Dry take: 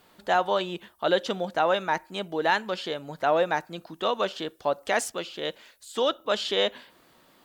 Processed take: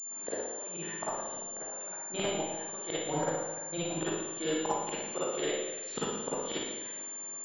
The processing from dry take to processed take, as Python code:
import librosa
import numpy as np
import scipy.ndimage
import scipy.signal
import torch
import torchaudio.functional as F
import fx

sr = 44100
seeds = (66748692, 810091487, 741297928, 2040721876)

y = fx.spec_quant(x, sr, step_db=15)
y = scipy.signal.sosfilt(scipy.signal.butter(2, 190.0, 'highpass', fs=sr, output='sos'), y)
y = fx.level_steps(y, sr, step_db=10)
y = fx.leveller(y, sr, passes=1)
y = fx.gate_flip(y, sr, shuts_db=-23.0, range_db=-31)
y = fx.doubler(y, sr, ms=19.0, db=-12.0)
y = fx.rev_schroeder(y, sr, rt60_s=1.2, comb_ms=38, drr_db=-9.5)
y = fx.pwm(y, sr, carrier_hz=7200.0)